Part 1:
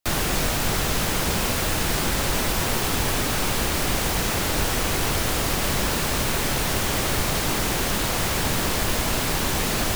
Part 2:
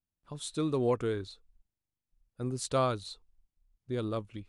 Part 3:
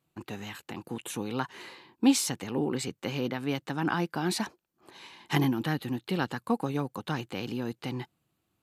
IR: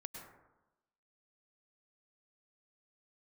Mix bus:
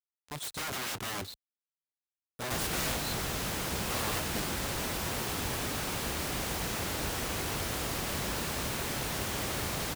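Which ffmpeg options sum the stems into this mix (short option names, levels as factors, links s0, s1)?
-filter_complex "[0:a]adelay=2450,volume=0.316[s0];[1:a]aeval=exprs='(mod(47.3*val(0)+1,2)-1)/47.3':c=same,acrusher=bits=7:mix=0:aa=0.000001,volume=1.33[s1];[s0][s1]amix=inputs=2:normalize=0,highpass=48"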